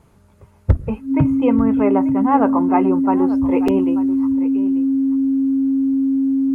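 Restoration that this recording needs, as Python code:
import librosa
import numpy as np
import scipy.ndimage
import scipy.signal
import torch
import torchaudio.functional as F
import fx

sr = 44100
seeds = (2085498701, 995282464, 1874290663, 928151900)

y = fx.notch(x, sr, hz=270.0, q=30.0)
y = fx.fix_interpolate(y, sr, at_s=(3.68,), length_ms=3.9)
y = fx.fix_echo_inverse(y, sr, delay_ms=888, level_db=-15.0)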